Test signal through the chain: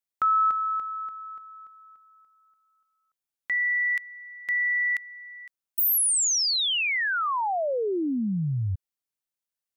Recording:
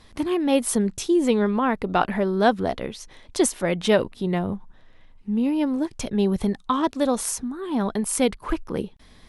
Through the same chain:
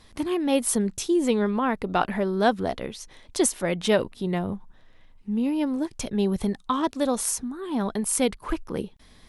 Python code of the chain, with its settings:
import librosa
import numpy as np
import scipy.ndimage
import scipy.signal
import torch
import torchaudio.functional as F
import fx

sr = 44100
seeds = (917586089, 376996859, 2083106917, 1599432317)

y = fx.high_shelf(x, sr, hz=5500.0, db=4.5)
y = y * librosa.db_to_amplitude(-2.5)